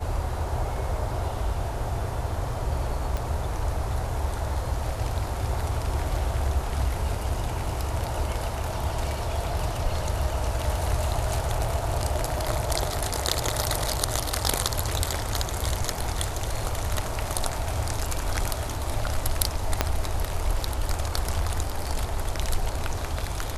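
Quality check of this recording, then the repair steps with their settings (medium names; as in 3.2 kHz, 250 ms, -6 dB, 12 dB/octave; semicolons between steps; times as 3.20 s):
3.17 s: pop
19.81 s: pop -4 dBFS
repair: de-click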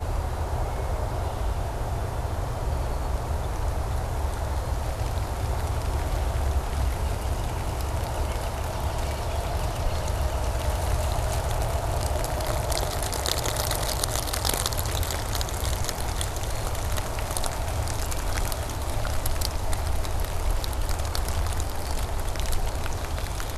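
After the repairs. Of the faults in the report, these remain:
3.17 s: pop
19.81 s: pop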